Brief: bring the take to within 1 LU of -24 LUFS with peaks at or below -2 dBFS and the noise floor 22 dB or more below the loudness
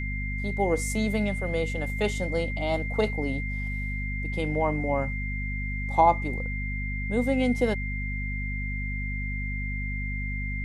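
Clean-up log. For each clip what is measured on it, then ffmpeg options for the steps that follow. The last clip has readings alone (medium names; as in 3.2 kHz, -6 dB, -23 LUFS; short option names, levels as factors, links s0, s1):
hum 50 Hz; highest harmonic 250 Hz; hum level -29 dBFS; steady tone 2.1 kHz; tone level -34 dBFS; loudness -28.5 LUFS; peak level -7.5 dBFS; loudness target -24.0 LUFS
-> -af "bandreject=f=50:t=h:w=6,bandreject=f=100:t=h:w=6,bandreject=f=150:t=h:w=6,bandreject=f=200:t=h:w=6,bandreject=f=250:t=h:w=6"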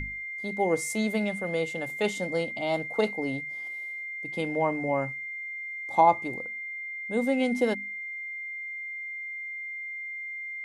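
hum not found; steady tone 2.1 kHz; tone level -34 dBFS
-> -af "bandreject=f=2100:w=30"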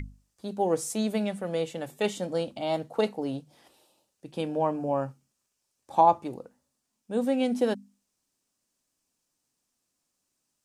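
steady tone not found; loudness -28.5 LUFS; peak level -8.5 dBFS; loudness target -24.0 LUFS
-> -af "volume=1.68"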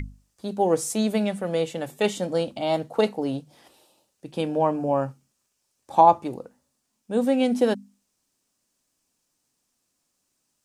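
loudness -24.0 LUFS; peak level -4.0 dBFS; noise floor -76 dBFS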